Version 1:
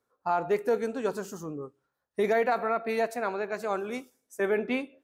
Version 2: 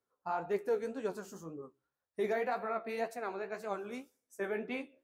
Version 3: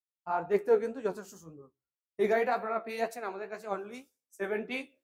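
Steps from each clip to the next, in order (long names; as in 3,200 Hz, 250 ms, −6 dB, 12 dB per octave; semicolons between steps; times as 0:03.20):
flanger 1.9 Hz, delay 9 ms, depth 8.2 ms, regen +42%; level −4.5 dB
multiband upward and downward expander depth 100%; level +4 dB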